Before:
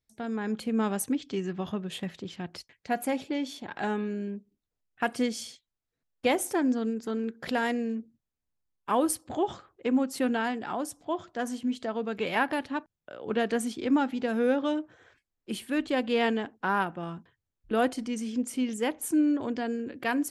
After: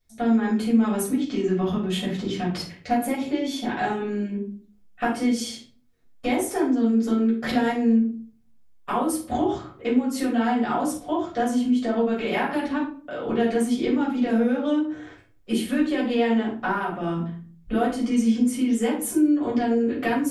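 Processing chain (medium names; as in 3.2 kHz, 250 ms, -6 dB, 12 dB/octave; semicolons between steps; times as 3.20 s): compression, threshold -35 dBFS, peak gain reduction 14.5 dB; simulated room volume 340 m³, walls furnished, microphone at 6.3 m; trim +2 dB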